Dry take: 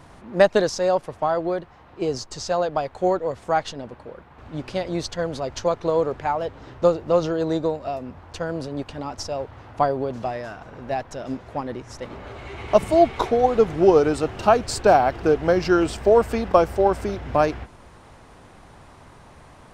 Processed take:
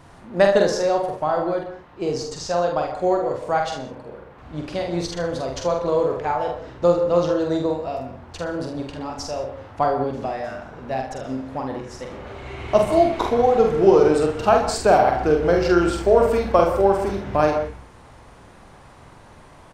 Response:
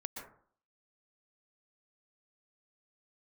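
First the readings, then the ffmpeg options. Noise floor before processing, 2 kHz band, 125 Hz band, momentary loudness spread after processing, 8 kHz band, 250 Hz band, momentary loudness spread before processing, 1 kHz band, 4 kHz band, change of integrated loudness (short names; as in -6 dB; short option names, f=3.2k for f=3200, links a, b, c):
-48 dBFS, +1.0 dB, +1.5 dB, 16 LU, +1.0 dB, +1.5 dB, 17 LU, +1.0 dB, +1.0 dB, +1.5 dB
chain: -filter_complex "[0:a]aecho=1:1:46|76:0.631|0.316,asplit=2[a][b];[1:a]atrim=start_sample=2205,afade=t=out:st=0.24:d=0.01,atrim=end_sample=11025[c];[b][c]afir=irnorm=-1:irlink=0,volume=-1dB[d];[a][d]amix=inputs=2:normalize=0,volume=-5dB"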